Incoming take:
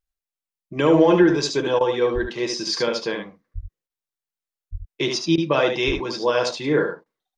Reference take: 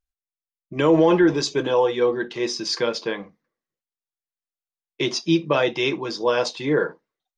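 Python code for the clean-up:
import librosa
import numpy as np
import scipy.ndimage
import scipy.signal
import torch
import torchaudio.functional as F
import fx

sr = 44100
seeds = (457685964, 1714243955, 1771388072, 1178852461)

y = fx.fix_deplosive(x, sr, at_s=(2.14, 3.54, 4.71, 5.86))
y = fx.fix_interpolate(y, sr, at_s=(1.79, 3.88, 5.36, 7.04), length_ms=17.0)
y = fx.fix_echo_inverse(y, sr, delay_ms=73, level_db=-6.0)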